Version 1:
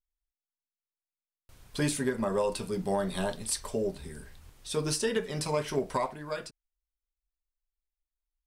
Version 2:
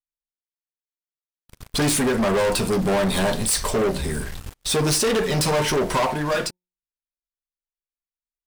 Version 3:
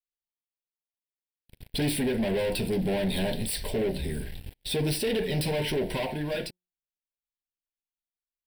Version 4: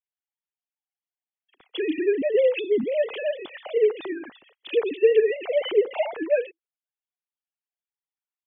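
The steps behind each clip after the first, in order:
de-hum 180.1 Hz, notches 5; gate -52 dBFS, range -7 dB; waveshaping leveller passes 5
static phaser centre 2.9 kHz, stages 4; trim -5 dB
formants replaced by sine waves; trim +5 dB

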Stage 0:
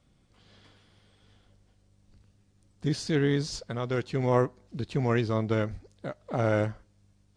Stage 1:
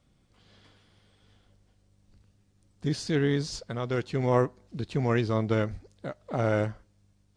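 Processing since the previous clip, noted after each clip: gain riding within 4 dB 2 s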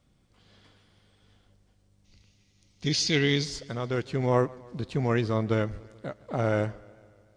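time-frequency box 2.05–3.44 s, 1.9–6.9 kHz +12 dB; modulated delay 147 ms, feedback 63%, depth 90 cents, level -23 dB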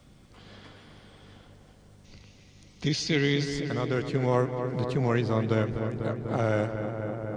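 filtered feedback delay 247 ms, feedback 80%, low-pass 2.4 kHz, level -9.5 dB; three bands compressed up and down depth 40%

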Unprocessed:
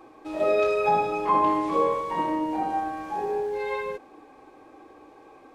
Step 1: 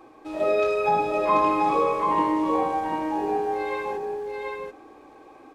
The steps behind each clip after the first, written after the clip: delay 737 ms -3 dB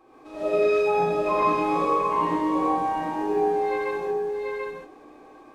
gated-style reverb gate 170 ms rising, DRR -7 dB; trim -8 dB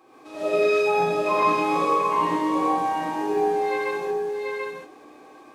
high-pass 98 Hz 12 dB/octave; treble shelf 2 kHz +7.5 dB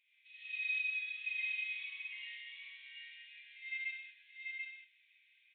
Chebyshev high-pass 2 kHz, order 6; resampled via 8 kHz; trim -5.5 dB

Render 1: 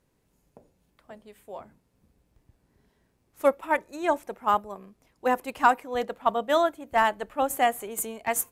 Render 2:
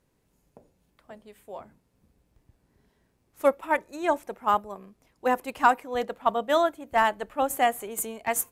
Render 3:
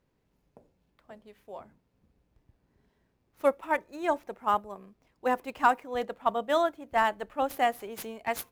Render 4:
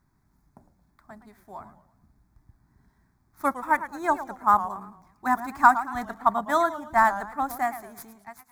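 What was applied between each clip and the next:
no audible change
median filter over 5 samples; trim -3 dB
fade out at the end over 1.43 s; static phaser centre 1.2 kHz, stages 4; modulated delay 111 ms, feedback 38%, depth 195 cents, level -13 dB; trim +8 dB

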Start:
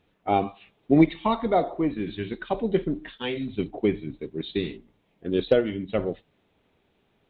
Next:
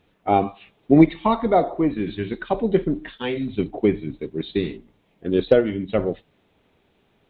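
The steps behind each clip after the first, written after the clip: dynamic bell 3.2 kHz, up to -5 dB, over -46 dBFS, Q 1.4; trim +4.5 dB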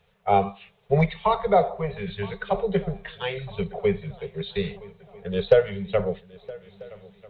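Chebyshev band-stop 200–400 Hz, order 5; shuffle delay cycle 1291 ms, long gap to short 3:1, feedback 40%, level -21.5 dB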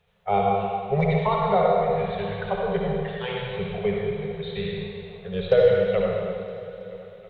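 reverberation RT60 2.3 s, pre-delay 52 ms, DRR -2.5 dB; trim -3.5 dB

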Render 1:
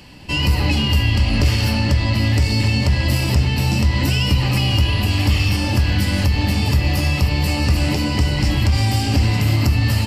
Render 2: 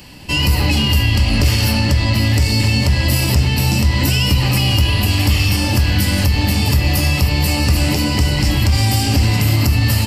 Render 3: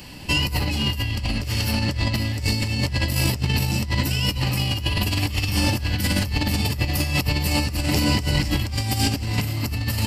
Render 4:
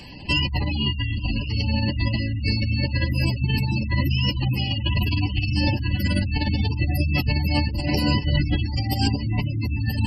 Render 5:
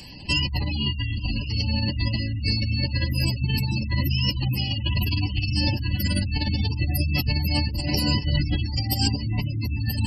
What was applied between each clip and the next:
treble shelf 7.8 kHz +11 dB; in parallel at -2 dB: peak limiter -9 dBFS, peak gain reduction 7 dB; on the sum: trim -2.5 dB
compressor with a negative ratio -17 dBFS, ratio -0.5; trim -4.5 dB
echo that smears into a reverb 1039 ms, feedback 66%, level -10.5 dB; spectral gate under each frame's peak -20 dB strong
tone controls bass +3 dB, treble +12 dB; trim -4.5 dB

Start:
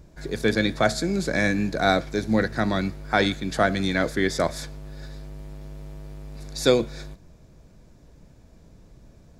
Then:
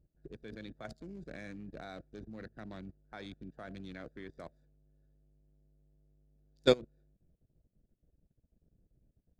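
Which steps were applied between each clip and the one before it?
local Wiener filter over 41 samples; level held to a coarse grid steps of 17 dB; upward expansion 1.5:1, over -45 dBFS; trim -3 dB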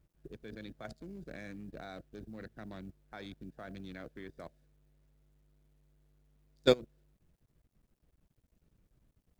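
companded quantiser 8-bit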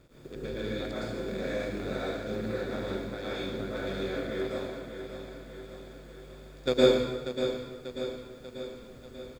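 spectral levelling over time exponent 0.6; feedback delay 590 ms, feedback 58%, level -9 dB; plate-style reverb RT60 1.2 s, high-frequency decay 0.85×, pre-delay 100 ms, DRR -8.5 dB; trim -4.5 dB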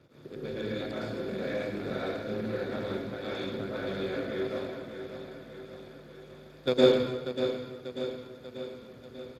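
Speex 28 kbps 32 kHz

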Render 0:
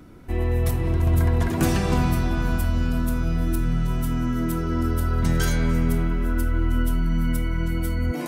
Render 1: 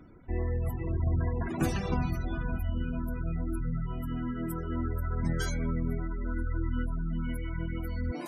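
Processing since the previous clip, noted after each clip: spectral gate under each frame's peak -30 dB strong; reverb removal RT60 1.1 s; trim -6 dB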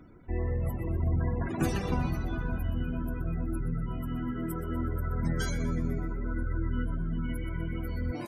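frequency-shifting echo 123 ms, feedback 49%, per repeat +66 Hz, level -13 dB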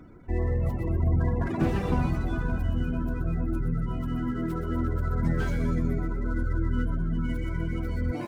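median filter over 9 samples; slew-rate limiter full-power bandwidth 24 Hz; trim +4 dB

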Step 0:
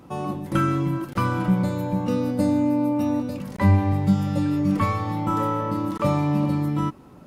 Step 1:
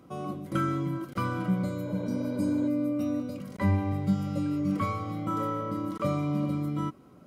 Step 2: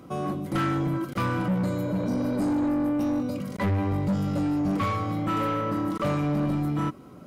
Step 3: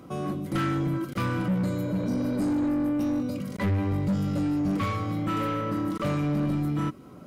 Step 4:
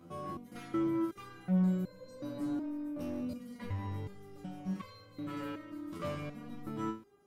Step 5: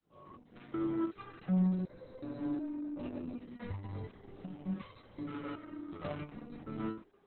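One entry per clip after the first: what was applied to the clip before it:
spectral replace 1.89–2.65 s, 340–4500 Hz before; comb of notches 890 Hz; trim -6 dB
saturation -29 dBFS, distortion -10 dB; trim +7.5 dB
dynamic bell 830 Hz, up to -5 dB, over -44 dBFS, Q 1.1
resonator arpeggio 2.7 Hz 85–520 Hz
fade-in on the opening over 1.06 s; Opus 6 kbps 48 kHz

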